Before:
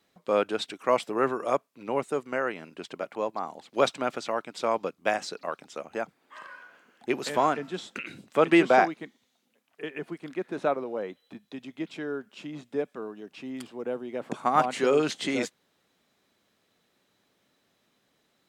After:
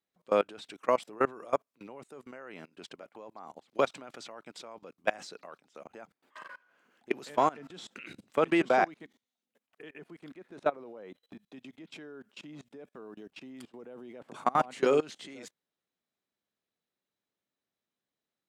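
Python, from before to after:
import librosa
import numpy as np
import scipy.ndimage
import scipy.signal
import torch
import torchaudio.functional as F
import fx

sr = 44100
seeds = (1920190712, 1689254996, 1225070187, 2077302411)

y = fx.level_steps(x, sr, step_db=23)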